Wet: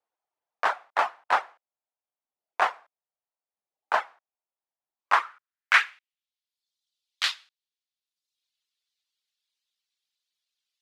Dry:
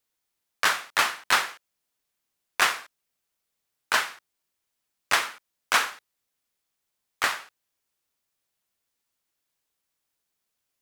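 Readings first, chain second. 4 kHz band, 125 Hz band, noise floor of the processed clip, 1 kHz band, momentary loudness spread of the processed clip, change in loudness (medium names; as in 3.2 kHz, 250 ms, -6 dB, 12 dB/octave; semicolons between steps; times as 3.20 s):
-5.0 dB, no reading, under -85 dBFS, +2.0 dB, 16 LU, -0.5 dB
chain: band-pass sweep 750 Hz -> 3.8 kHz, 4.88–6.37 s; reverb removal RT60 0.97 s; trim +8 dB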